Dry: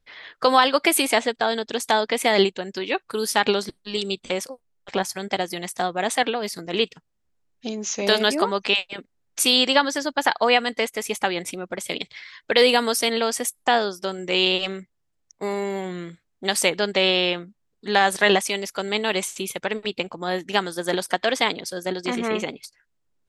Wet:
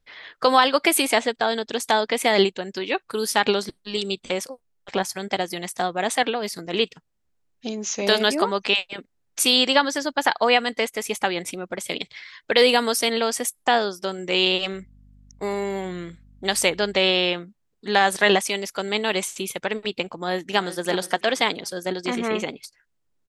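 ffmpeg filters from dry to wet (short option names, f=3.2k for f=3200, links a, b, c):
-filter_complex "[0:a]asettb=1/sr,asplit=3[a][b][c];[a]atrim=end=14.734[d];[b]atrim=start=14.73:end=17,asetpts=PTS-STARTPTS,afade=t=in:d=0.004:c=qsin,afade=t=out:st=2.266:d=0.004:c=qsin,aeval=exprs='val(0)+0.00316*(sin(2*PI*50*n/s)+sin(2*PI*2*50*n/s)/2+sin(2*PI*3*50*n/s)/3+sin(2*PI*4*50*n/s)/4+sin(2*PI*5*50*n/s)/5)':c=same[e];[c]atrim=start=16.996[f];[d][e]acrossfade=d=0.004:c1=hsin:c2=qsin[g];[g][f]acrossfade=d=0.004:c1=qsin:c2=hsin,asplit=2[h][i];[i]afade=t=in:st=20.16:d=0.01,afade=t=out:st=20.84:d=0.01,aecho=0:1:360|720|1080:0.223872|0.0671616|0.0201485[j];[h][j]amix=inputs=2:normalize=0"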